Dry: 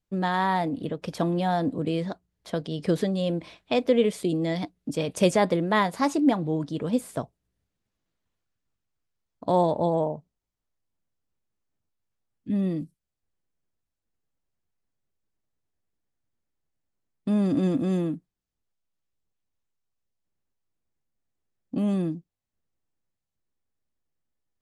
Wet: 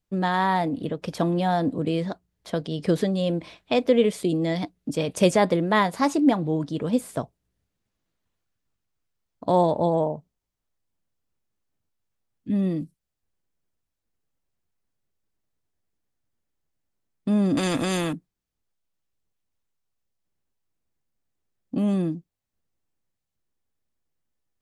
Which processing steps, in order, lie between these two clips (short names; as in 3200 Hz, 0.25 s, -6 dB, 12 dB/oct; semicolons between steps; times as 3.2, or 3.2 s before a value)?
17.57–18.13 spectral compressor 2:1; gain +2 dB